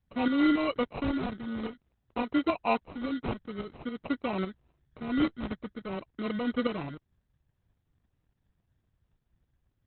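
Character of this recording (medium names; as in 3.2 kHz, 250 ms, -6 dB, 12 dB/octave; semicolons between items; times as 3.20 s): phasing stages 2, 0.51 Hz, lowest notch 630–2300 Hz; aliases and images of a low sample rate 1.7 kHz, jitter 0%; tremolo saw up 3.6 Hz, depth 60%; Opus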